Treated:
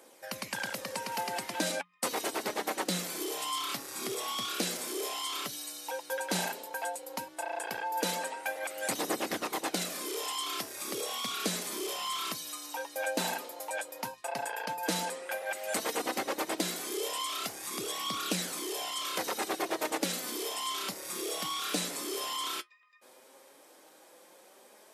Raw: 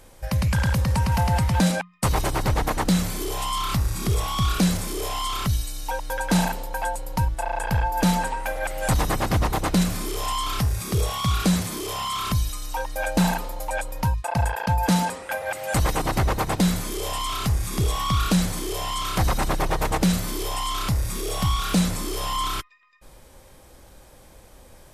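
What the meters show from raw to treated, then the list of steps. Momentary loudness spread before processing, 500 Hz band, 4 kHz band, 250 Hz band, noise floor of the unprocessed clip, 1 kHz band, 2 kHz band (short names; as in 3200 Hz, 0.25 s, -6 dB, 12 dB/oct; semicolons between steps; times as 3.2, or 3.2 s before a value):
7 LU, -6.0 dB, -4.5 dB, -14.5 dB, -50 dBFS, -9.5 dB, -6.5 dB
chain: flange 0.11 Hz, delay 0.1 ms, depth 8.5 ms, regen +58%; HPF 290 Hz 24 dB/oct; dynamic EQ 1000 Hz, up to -6 dB, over -44 dBFS, Q 1.1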